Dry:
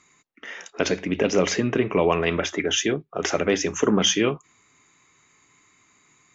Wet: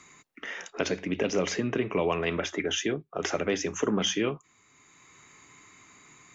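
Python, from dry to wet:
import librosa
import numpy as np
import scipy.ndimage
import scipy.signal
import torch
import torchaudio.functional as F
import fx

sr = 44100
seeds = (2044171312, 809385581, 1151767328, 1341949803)

y = fx.band_squash(x, sr, depth_pct=40)
y = y * 10.0 ** (-6.0 / 20.0)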